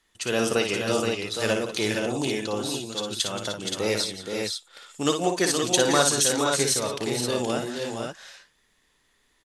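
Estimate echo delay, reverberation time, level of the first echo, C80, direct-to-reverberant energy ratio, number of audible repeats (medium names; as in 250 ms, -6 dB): 57 ms, no reverb, -6.5 dB, no reverb, no reverb, 4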